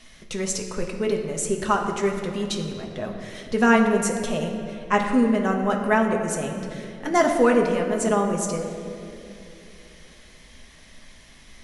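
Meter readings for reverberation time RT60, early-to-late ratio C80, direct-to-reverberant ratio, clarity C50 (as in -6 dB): 2.8 s, 6.0 dB, 1.0 dB, 5.0 dB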